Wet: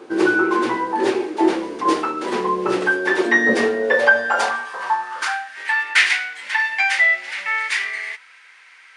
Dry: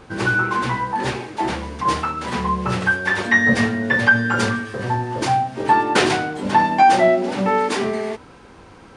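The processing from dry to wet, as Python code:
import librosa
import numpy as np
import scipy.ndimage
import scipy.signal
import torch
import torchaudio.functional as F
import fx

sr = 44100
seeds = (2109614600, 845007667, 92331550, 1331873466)

y = fx.filter_sweep_highpass(x, sr, from_hz=350.0, to_hz=2000.0, start_s=3.52, end_s=5.7, q=4.5)
y = y * librosa.db_to_amplitude(-1.0)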